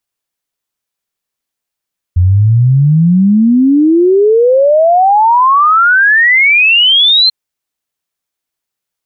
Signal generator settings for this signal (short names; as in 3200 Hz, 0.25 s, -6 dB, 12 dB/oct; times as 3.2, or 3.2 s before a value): log sweep 86 Hz -> 4200 Hz 5.14 s -4.5 dBFS